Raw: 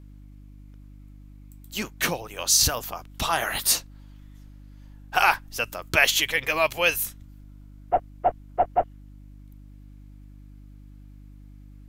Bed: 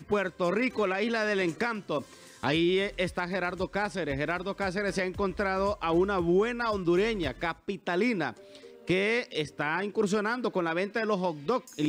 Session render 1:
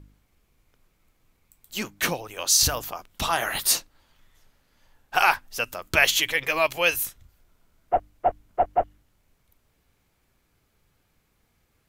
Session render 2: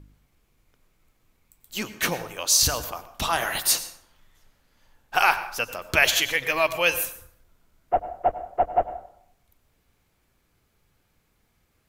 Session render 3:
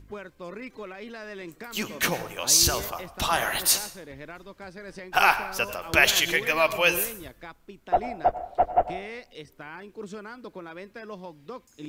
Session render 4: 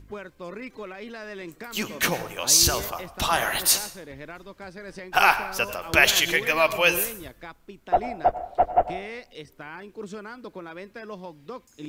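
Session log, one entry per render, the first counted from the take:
hum removal 50 Hz, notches 6
dense smooth reverb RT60 0.68 s, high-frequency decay 0.6×, pre-delay 80 ms, DRR 12.5 dB
mix in bed −11.5 dB
level +1.5 dB

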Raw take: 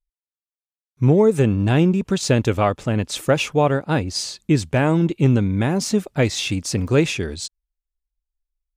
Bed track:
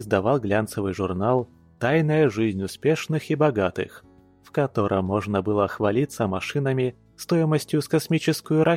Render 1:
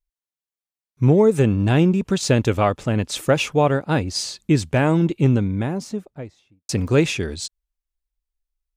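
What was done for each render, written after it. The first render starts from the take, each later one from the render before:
0:04.97–0:06.69: fade out and dull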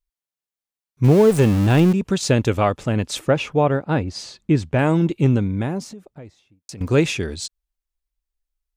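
0:01.04–0:01.93: converter with a step at zero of −22 dBFS
0:03.19–0:04.79: low-pass filter 2,200 Hz 6 dB per octave
0:05.91–0:06.81: downward compressor 10 to 1, threshold −33 dBFS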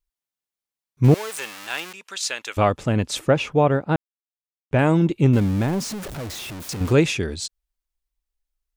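0:01.14–0:02.57: high-pass filter 1,400 Hz
0:03.96–0:04.71: silence
0:05.33–0:06.93: converter with a step at zero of −28 dBFS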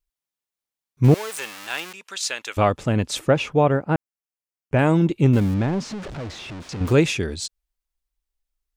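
0:03.72–0:04.77: parametric band 3,700 Hz −13 dB 0.27 octaves
0:05.54–0:06.87: high-frequency loss of the air 110 metres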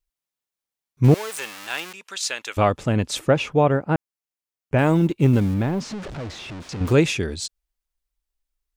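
0:04.78–0:05.81: mu-law and A-law mismatch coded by A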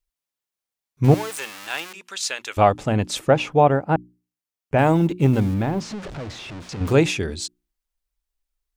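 mains-hum notches 60/120/180/240/300/360 Hz
dynamic equaliser 770 Hz, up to +7 dB, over −36 dBFS, Q 2.8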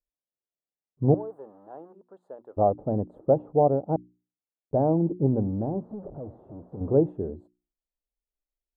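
inverse Chebyshev low-pass filter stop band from 2,200 Hz, stop band 60 dB
spectral tilt +2.5 dB per octave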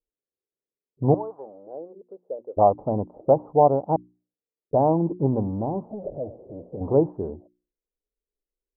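floating-point word with a short mantissa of 6 bits
envelope-controlled low-pass 430–1,000 Hz up, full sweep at −26 dBFS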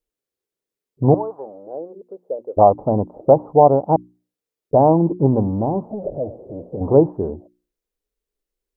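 level +6.5 dB
brickwall limiter −1 dBFS, peak gain reduction 2 dB

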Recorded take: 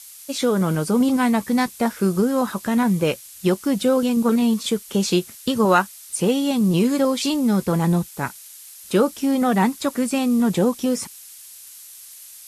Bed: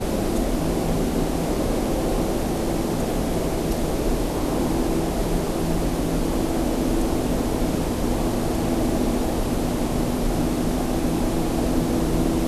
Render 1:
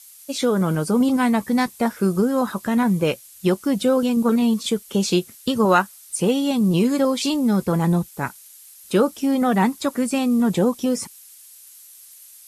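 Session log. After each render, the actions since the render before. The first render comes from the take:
broadband denoise 6 dB, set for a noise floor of −42 dBFS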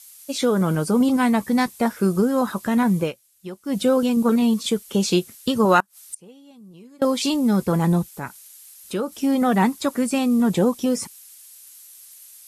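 0:03.00–0:03.77: duck −15.5 dB, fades 0.13 s
0:05.80–0:07.02: gate with flip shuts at −19 dBFS, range −27 dB
0:08.16–0:09.12: downward compressor 1.5 to 1, threshold −35 dBFS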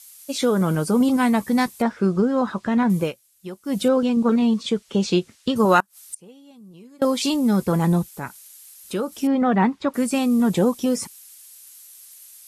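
0:01.82–0:02.90: high-frequency loss of the air 120 metres
0:03.88–0:05.56: high-frequency loss of the air 93 metres
0:09.27–0:09.94: low-pass filter 2,600 Hz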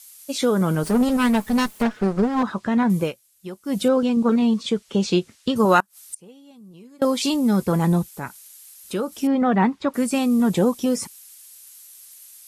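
0:00.83–0:02.43: lower of the sound and its delayed copy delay 4.7 ms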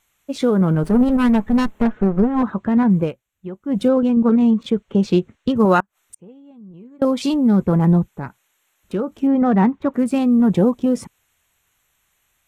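adaptive Wiener filter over 9 samples
spectral tilt −2 dB per octave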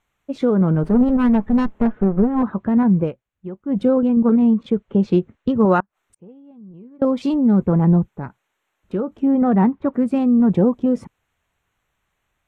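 low-pass filter 1,300 Hz 6 dB per octave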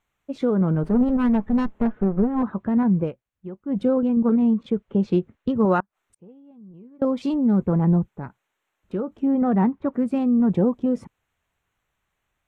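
level −4 dB

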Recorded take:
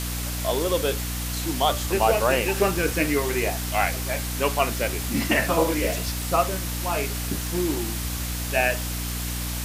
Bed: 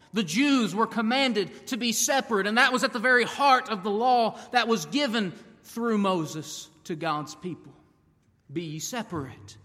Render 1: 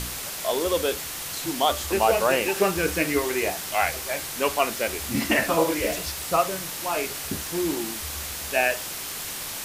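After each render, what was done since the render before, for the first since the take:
hum removal 60 Hz, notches 5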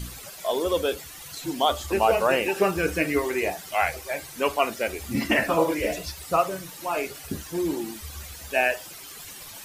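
broadband denoise 13 dB, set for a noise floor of −34 dBFS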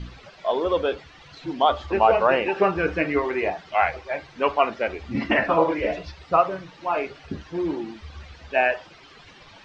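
dynamic equaliser 1,000 Hz, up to +5 dB, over −34 dBFS, Q 0.83
Bessel low-pass filter 3,000 Hz, order 6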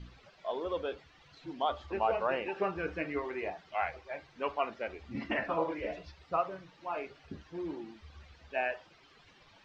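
level −12.5 dB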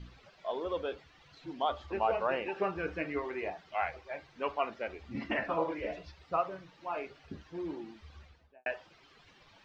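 0:08.14–0:08.66: fade out and dull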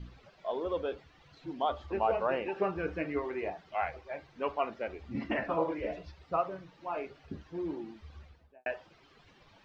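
tilt shelving filter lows +3 dB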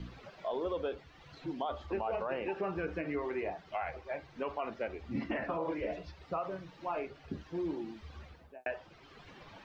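brickwall limiter −26 dBFS, peak gain reduction 9 dB
multiband upward and downward compressor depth 40%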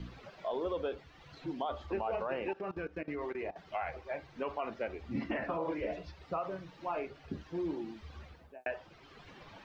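0:02.53–0:03.56: output level in coarse steps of 19 dB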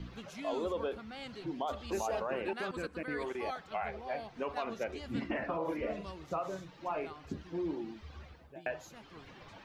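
mix in bed −22 dB

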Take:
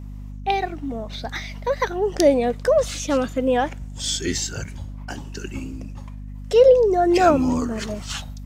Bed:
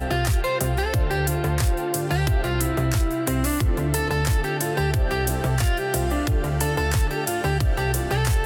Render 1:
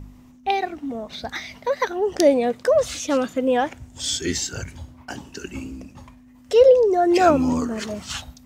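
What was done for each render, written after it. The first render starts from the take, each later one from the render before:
hum removal 50 Hz, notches 4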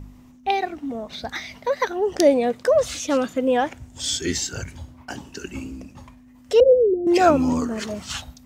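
0:06.60–0:07.07: Butterworth low-pass 530 Hz 72 dB per octave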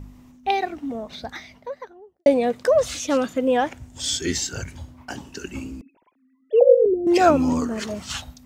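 0:00.85–0:02.26: fade out and dull
0:05.81–0:06.86: three sine waves on the formant tracks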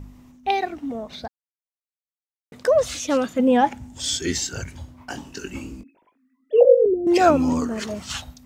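0:01.28–0:02.52: silence
0:03.39–0:03.94: hollow resonant body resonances 220/840 Hz, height 15 dB, ringing for 95 ms
0:04.96–0:06.65: double-tracking delay 21 ms −7 dB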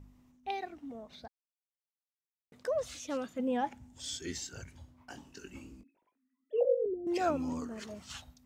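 level −15 dB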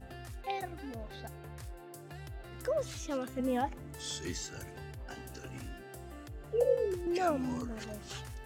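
mix in bed −24.5 dB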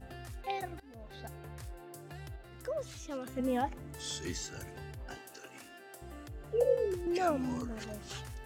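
0:00.80–0:01.29: fade in, from −19 dB
0:02.36–0:03.26: clip gain −4.5 dB
0:05.17–0:06.02: Bessel high-pass filter 500 Hz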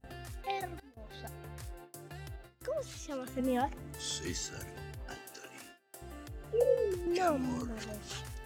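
high-shelf EQ 2,600 Hz +2.5 dB
noise gate with hold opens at −40 dBFS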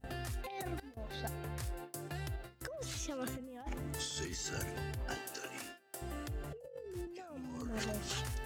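compressor whose output falls as the input rises −42 dBFS, ratio −1

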